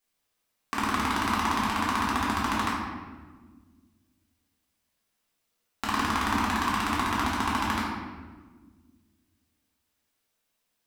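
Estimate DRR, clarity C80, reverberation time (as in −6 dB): −7.5 dB, 2.5 dB, 1.4 s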